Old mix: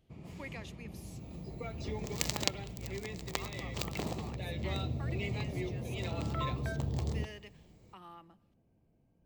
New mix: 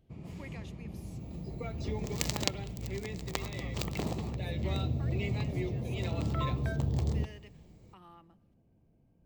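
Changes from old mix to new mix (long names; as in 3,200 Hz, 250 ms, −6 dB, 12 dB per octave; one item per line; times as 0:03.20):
speech −4.5 dB
master: add low-shelf EQ 390 Hz +4.5 dB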